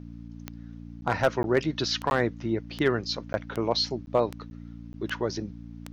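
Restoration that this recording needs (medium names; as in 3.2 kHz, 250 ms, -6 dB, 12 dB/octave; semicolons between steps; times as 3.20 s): clip repair -12.5 dBFS; de-click; de-hum 57.6 Hz, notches 5; interpolate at 1.01/1.43/2.10/3.33/4.06/4.50/4.93 s, 11 ms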